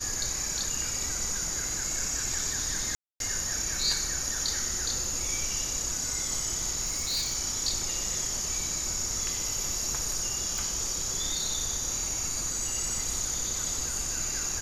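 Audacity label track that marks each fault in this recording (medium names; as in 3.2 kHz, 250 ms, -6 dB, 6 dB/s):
2.950000	3.200000	dropout 252 ms
6.850000	7.370000	clipped -25.5 dBFS
10.580000	10.580000	pop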